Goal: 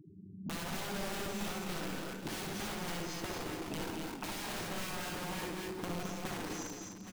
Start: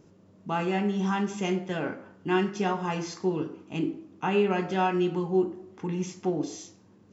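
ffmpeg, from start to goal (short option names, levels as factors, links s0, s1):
-filter_complex "[0:a]afftfilt=real='re*gte(hypot(re,im),0.00891)':imag='im*gte(hypot(re,im),0.00891)':win_size=1024:overlap=0.75,aeval=exprs='(mod(18.8*val(0)+1,2)-1)/18.8':c=same,acompressor=threshold=0.00708:ratio=12,asplit=2[s0][s1];[s1]aecho=0:1:59|69|160|255|562|815:0.562|0.562|0.266|0.531|0.15|0.188[s2];[s0][s2]amix=inputs=2:normalize=0,acrossover=split=490[s3][s4];[s4]acompressor=threshold=0.00447:ratio=2[s5];[s3][s5]amix=inputs=2:normalize=0,asplit=2[s6][s7];[s7]aecho=0:1:217:0.447[s8];[s6][s8]amix=inputs=2:normalize=0,volume=1.68"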